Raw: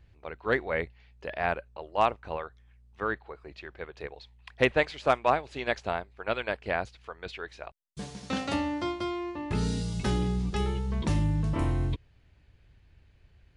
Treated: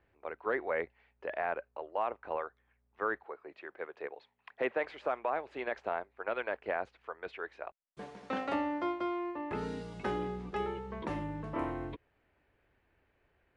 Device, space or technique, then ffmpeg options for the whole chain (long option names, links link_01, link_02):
DJ mixer with the lows and highs turned down: -filter_complex "[0:a]asettb=1/sr,asplit=3[link_01][link_02][link_03];[link_01]atrim=end=3.234[link_04];[link_02]atrim=start=3.23:end=4.84,asetpts=PTS-STARTPTS,afade=type=in:duration=0.004:curve=qsin,afade=type=out:start_time=1.606:duration=0.004:curve=qsin,highpass=150[link_05];[link_03]atrim=start=4.836[link_06];[link_04][link_05]acrossfade=duration=0.004:curve1=hsin:curve2=qsin[link_07];[link_07][link_06]acrossfade=duration=0.004:curve1=qsin:curve2=hsin,acrossover=split=280 2300:gain=0.112 1 0.1[link_08][link_09][link_10];[link_08][link_09][link_10]amix=inputs=3:normalize=0,alimiter=limit=-21.5dB:level=0:latency=1:release=51"